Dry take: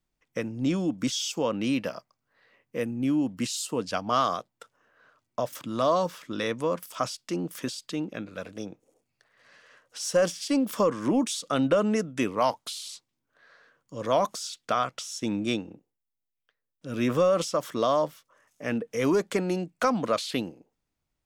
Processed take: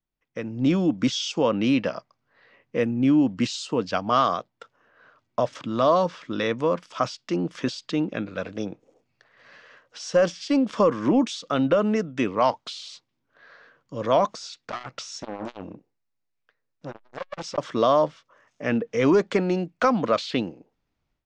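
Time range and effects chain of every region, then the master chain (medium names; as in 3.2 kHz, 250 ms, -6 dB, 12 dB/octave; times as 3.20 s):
14.34–17.58 s: peaking EQ 3.2 kHz -7.5 dB 0.25 oct + hard clipper -29.5 dBFS + transformer saturation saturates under 530 Hz
whole clip: Bessel low-pass 4.2 kHz, order 6; level rider gain up to 14 dB; trim -7 dB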